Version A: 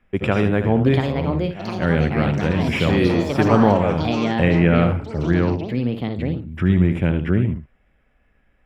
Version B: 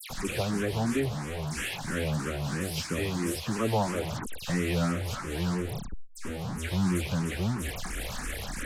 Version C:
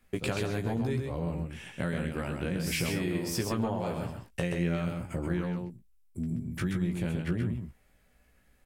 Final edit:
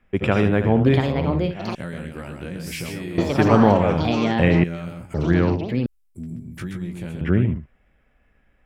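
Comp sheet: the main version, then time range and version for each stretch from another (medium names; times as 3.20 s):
A
1.75–3.18 s: from C
4.64–5.14 s: from C
5.86–7.21 s: from C
not used: B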